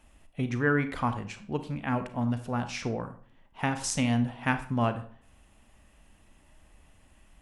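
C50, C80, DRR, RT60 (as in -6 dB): 12.0 dB, 16.0 dB, 9.5 dB, 0.50 s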